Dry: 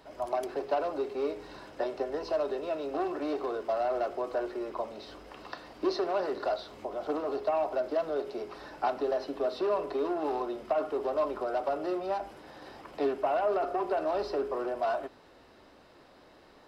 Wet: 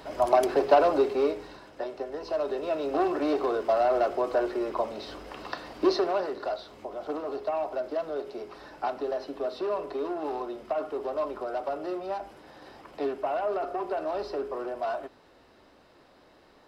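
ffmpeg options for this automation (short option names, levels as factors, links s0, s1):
-af "volume=7.94,afade=t=out:st=0.93:d=0.67:silence=0.251189,afade=t=in:st=2.17:d=0.84:silence=0.398107,afade=t=out:st=5.89:d=0.43:silence=0.446684"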